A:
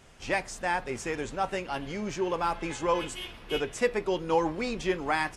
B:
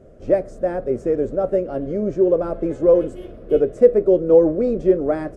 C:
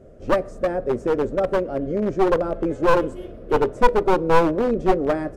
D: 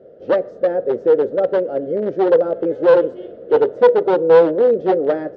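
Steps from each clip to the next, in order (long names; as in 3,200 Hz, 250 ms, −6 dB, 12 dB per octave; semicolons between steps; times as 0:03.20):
drawn EQ curve 160 Hz 0 dB, 610 Hz +8 dB, 880 Hz −20 dB, 1,300 Hz −12 dB, 2,700 Hz −26 dB, 10,000 Hz −22 dB; level +8.5 dB
wavefolder on the positive side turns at −15.5 dBFS; on a send at −22.5 dB: convolution reverb, pre-delay 6 ms
loudspeaker in its box 210–4,100 Hz, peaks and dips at 240 Hz −5 dB, 490 Hz +9 dB, 1,100 Hz −9 dB, 2,400 Hz −9 dB; level +1.5 dB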